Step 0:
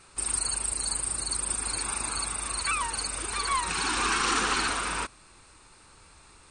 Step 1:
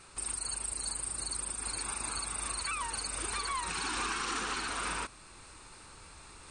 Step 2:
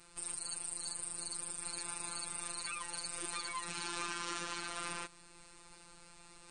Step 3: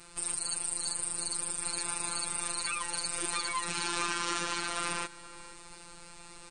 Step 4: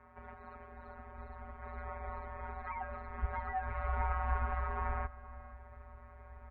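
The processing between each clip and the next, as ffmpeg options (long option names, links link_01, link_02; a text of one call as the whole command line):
ffmpeg -i in.wav -af "alimiter=level_in=0.5dB:limit=-24dB:level=0:latency=1:release=468,volume=-0.5dB,areverse,acompressor=mode=upward:threshold=-46dB:ratio=2.5,areverse" out.wav
ffmpeg -i in.wav -af "equalizer=frequency=1300:width=1.5:gain=-2.5,afftfilt=real='hypot(re,im)*cos(PI*b)':imag='0':win_size=1024:overlap=0.75,volume=-1.5dB" out.wav
ffmpeg -i in.wav -filter_complex "[0:a]asplit=2[link_01][link_02];[link_02]adelay=472.3,volume=-16dB,highshelf=frequency=4000:gain=-10.6[link_03];[link_01][link_03]amix=inputs=2:normalize=0,volume=7.5dB" out.wav
ffmpeg -i in.wav -af "highpass=frequency=200:width_type=q:width=0.5412,highpass=frequency=200:width_type=q:width=1.307,lowpass=frequency=2000:width_type=q:width=0.5176,lowpass=frequency=2000:width_type=q:width=0.7071,lowpass=frequency=2000:width_type=q:width=1.932,afreqshift=-280,asubboost=boost=11:cutoff=54,volume=-1.5dB" out.wav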